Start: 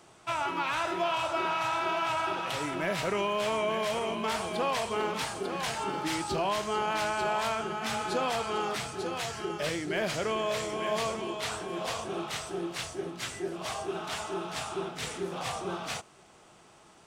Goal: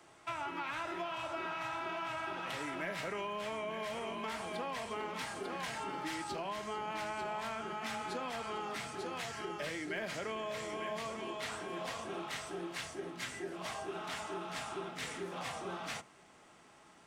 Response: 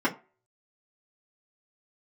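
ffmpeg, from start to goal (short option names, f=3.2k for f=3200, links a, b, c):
-filter_complex "[0:a]asplit=2[a][b];[b]asubboost=boost=5.5:cutoff=180[c];[1:a]atrim=start_sample=2205,lowshelf=f=420:g=-10.5[d];[c][d]afir=irnorm=-1:irlink=0,volume=-18.5dB[e];[a][e]amix=inputs=2:normalize=0,acrossover=split=110|330[f][g][h];[f]acompressor=threshold=-56dB:ratio=4[i];[g]acompressor=threshold=-43dB:ratio=4[j];[h]acompressor=threshold=-33dB:ratio=4[k];[i][j][k]amix=inputs=3:normalize=0,equalizer=f=1.9k:w=2.3:g=5.5,volume=-6dB"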